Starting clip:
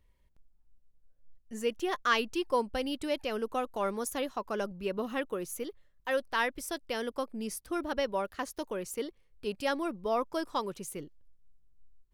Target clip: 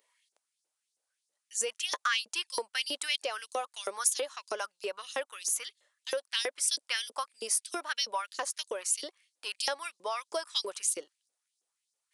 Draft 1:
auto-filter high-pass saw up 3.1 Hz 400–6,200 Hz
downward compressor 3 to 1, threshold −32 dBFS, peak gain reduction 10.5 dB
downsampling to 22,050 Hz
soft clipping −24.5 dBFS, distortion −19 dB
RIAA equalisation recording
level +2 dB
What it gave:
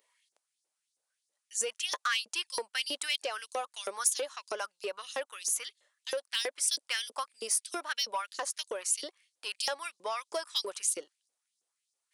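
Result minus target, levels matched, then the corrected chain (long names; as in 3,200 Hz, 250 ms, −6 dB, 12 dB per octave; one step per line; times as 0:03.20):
soft clipping: distortion +12 dB
auto-filter high-pass saw up 3.1 Hz 400–6,200 Hz
downward compressor 3 to 1, threshold −32 dBFS, peak gain reduction 10.5 dB
downsampling to 22,050 Hz
soft clipping −17 dBFS, distortion −30 dB
RIAA equalisation recording
level +2 dB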